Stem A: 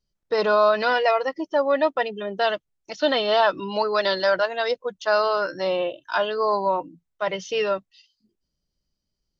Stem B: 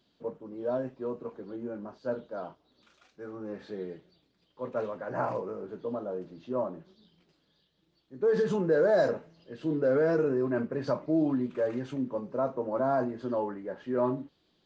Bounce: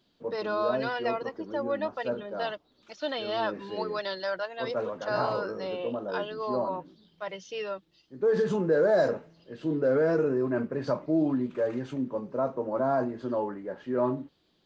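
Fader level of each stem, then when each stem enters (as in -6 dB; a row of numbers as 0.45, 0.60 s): -11.0, +1.0 dB; 0.00, 0.00 s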